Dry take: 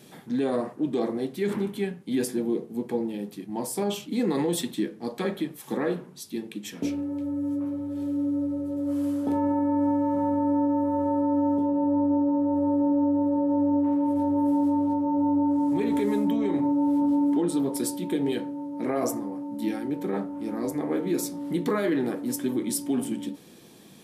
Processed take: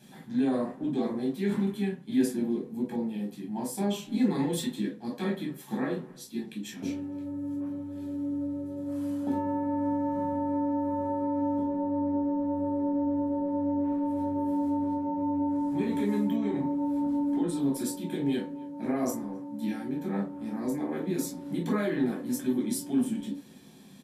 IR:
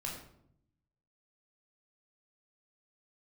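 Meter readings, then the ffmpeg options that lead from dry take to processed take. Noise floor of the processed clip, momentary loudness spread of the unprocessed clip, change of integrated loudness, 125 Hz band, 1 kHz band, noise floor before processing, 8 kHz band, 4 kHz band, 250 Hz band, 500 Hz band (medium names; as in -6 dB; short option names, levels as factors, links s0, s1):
-48 dBFS, 8 LU, -4.0 dB, 0.0 dB, -4.0 dB, -48 dBFS, -5.0 dB, no reading, -4.0 dB, -5.0 dB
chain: -filter_complex "[0:a]asplit=2[s0][s1];[s1]adelay=270,highpass=300,lowpass=3400,asoftclip=type=hard:threshold=0.0631,volume=0.0794[s2];[s0][s2]amix=inputs=2:normalize=0[s3];[1:a]atrim=start_sample=2205,atrim=end_sample=3969,asetrate=66150,aresample=44100[s4];[s3][s4]afir=irnorm=-1:irlink=0"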